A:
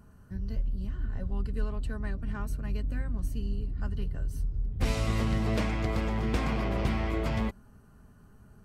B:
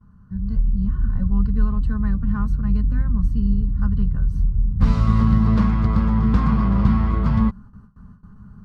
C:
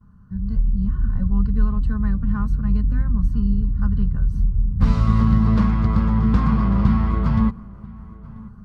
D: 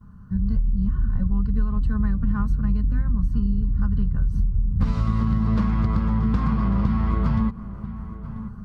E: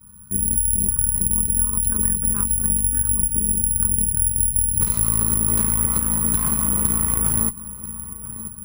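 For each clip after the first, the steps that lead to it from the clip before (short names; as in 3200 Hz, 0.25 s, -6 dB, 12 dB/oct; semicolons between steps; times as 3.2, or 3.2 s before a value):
gate with hold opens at -46 dBFS; EQ curve 130 Hz 0 dB, 200 Hz +5 dB, 320 Hz -13 dB, 480 Hz -12 dB, 680 Hz -16 dB, 1100 Hz 0 dB, 2400 Hz -18 dB, 4400 Hz -13 dB, 9400 Hz -26 dB; AGC gain up to 7.5 dB; gain +4.5 dB
darkening echo 0.987 s, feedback 28%, low-pass 1800 Hz, level -21 dB
compressor, threshold -22 dBFS, peak gain reduction 12 dB; gain +4.5 dB
high shelf 2100 Hz +11.5 dB; added harmonics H 6 -16 dB, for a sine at -7.5 dBFS; careless resampling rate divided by 4×, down none, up zero stuff; gain -6.5 dB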